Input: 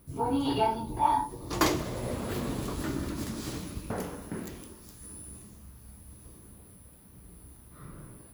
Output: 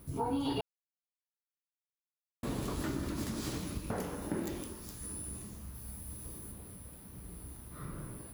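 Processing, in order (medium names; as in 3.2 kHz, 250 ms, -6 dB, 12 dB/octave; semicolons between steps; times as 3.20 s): compression 2:1, threshold -41 dBFS, peak gain reduction 12 dB; 0.61–2.43 s: mute; 4.22–4.63 s: small resonant body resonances 330/570/820/3600 Hz, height 8 dB; 5.74–6.52 s: treble shelf 8.9 kHz +6 dB; trim +3.5 dB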